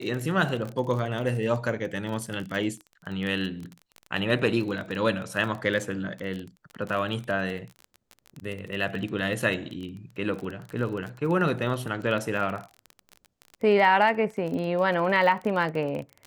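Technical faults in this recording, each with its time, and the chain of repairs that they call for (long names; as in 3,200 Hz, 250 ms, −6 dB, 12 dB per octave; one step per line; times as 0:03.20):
surface crackle 28 per second −31 dBFS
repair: click removal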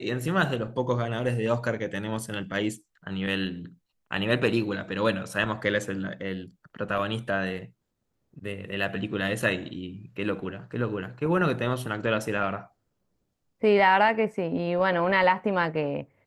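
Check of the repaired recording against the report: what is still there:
none of them is left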